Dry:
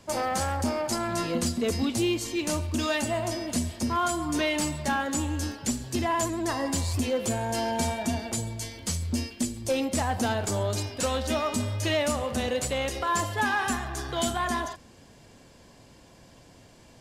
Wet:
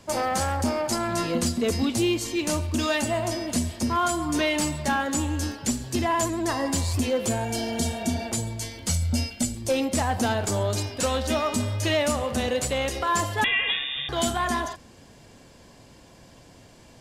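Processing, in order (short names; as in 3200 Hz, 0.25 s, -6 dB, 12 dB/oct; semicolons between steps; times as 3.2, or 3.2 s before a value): 7.47–8.21 spectral repair 480–2800 Hz after; 8.89–9.55 comb 1.4 ms, depth 65%; 13.44–14.09 inverted band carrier 3600 Hz; gain +2.5 dB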